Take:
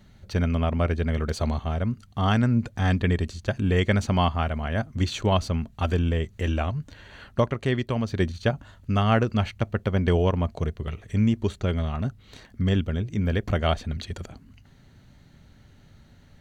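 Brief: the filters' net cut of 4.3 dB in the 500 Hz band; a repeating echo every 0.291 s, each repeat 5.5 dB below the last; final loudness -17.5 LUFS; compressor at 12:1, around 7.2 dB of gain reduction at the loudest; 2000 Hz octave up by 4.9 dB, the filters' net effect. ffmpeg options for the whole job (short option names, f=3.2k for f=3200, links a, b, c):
-af "equalizer=f=500:t=o:g=-6,equalizer=f=2k:t=o:g=6.5,acompressor=threshold=-24dB:ratio=12,aecho=1:1:291|582|873|1164|1455|1746|2037:0.531|0.281|0.149|0.079|0.0419|0.0222|0.0118,volume=11.5dB"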